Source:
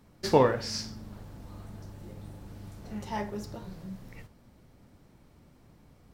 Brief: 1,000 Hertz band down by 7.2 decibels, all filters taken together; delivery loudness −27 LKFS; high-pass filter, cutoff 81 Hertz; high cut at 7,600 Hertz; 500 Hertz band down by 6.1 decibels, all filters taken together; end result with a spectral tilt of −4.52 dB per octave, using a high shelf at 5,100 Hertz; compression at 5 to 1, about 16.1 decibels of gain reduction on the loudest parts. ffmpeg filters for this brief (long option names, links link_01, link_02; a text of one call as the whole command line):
ffmpeg -i in.wav -af "highpass=81,lowpass=7600,equalizer=frequency=500:width_type=o:gain=-5.5,equalizer=frequency=1000:width_type=o:gain=-7,highshelf=frequency=5100:gain=7,acompressor=threshold=-39dB:ratio=5,volume=18dB" out.wav